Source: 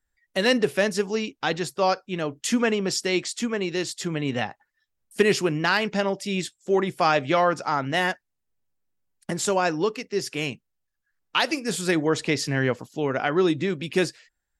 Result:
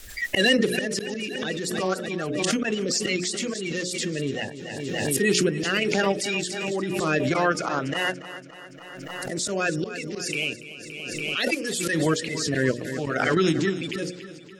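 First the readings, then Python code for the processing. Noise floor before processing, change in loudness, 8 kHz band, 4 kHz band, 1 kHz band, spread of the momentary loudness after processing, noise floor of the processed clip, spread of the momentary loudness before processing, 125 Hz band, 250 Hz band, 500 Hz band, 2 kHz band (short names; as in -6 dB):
-79 dBFS, -0.5 dB, +3.5 dB, +2.0 dB, -4.5 dB, 12 LU, -43 dBFS, 8 LU, +0.5 dB, 0.0 dB, -2.0 dB, +1.0 dB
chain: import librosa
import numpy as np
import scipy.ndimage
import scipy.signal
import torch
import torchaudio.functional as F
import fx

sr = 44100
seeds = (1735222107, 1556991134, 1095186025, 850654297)

p1 = fx.spec_quant(x, sr, step_db=30)
p2 = fx.low_shelf(p1, sr, hz=150.0, db=-9.0)
p3 = fx.hum_notches(p2, sr, base_hz=60, count=10)
p4 = fx.level_steps(p3, sr, step_db=13)
p5 = p3 + (p4 * 10.0 ** (2.5 / 20.0))
p6 = fx.auto_swell(p5, sr, attack_ms=134.0)
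p7 = fx.rotary_switch(p6, sr, hz=7.0, then_hz=0.7, switch_at_s=3.05)
p8 = fx.peak_eq(p7, sr, hz=950.0, db=-7.5, octaves=0.8)
p9 = p8 + fx.echo_feedback(p8, sr, ms=285, feedback_pct=55, wet_db=-14, dry=0)
y = fx.pre_swell(p9, sr, db_per_s=26.0)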